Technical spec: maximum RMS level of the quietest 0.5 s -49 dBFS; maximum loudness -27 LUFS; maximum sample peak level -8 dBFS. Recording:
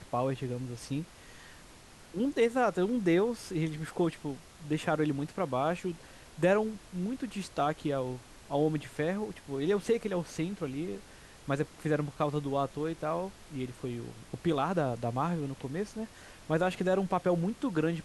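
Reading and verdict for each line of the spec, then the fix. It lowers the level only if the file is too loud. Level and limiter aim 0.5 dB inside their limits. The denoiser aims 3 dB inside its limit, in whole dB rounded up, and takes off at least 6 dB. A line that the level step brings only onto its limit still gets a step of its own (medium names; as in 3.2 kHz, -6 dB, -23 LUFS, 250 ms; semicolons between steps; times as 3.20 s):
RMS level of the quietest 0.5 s -53 dBFS: pass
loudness -32.5 LUFS: pass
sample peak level -15.5 dBFS: pass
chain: none needed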